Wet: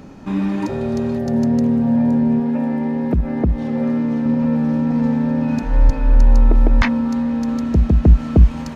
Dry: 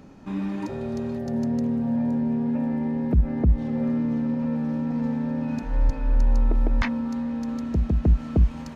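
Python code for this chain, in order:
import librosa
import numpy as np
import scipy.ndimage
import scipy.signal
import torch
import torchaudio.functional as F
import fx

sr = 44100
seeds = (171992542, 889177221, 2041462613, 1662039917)

y = fx.low_shelf(x, sr, hz=170.0, db=-9.0, at=(2.4, 4.26))
y = y * librosa.db_to_amplitude(8.5)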